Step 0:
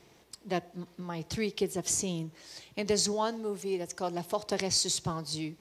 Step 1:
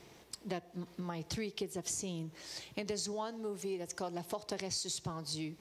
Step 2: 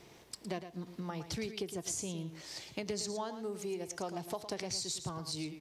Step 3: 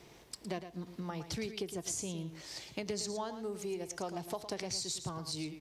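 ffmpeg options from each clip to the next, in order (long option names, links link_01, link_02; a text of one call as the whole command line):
ffmpeg -i in.wav -af "acompressor=threshold=-39dB:ratio=4,volume=2dB" out.wav
ffmpeg -i in.wav -af "aecho=1:1:111:0.299" out.wav
ffmpeg -i in.wav -af "aeval=exprs='val(0)+0.000316*(sin(2*PI*50*n/s)+sin(2*PI*2*50*n/s)/2+sin(2*PI*3*50*n/s)/3+sin(2*PI*4*50*n/s)/4+sin(2*PI*5*50*n/s)/5)':channel_layout=same" out.wav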